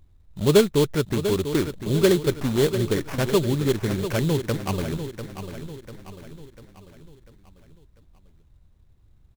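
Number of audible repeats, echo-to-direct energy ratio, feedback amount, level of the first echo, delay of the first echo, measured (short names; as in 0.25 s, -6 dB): 4, -9.0 dB, 48%, -10.0 dB, 0.695 s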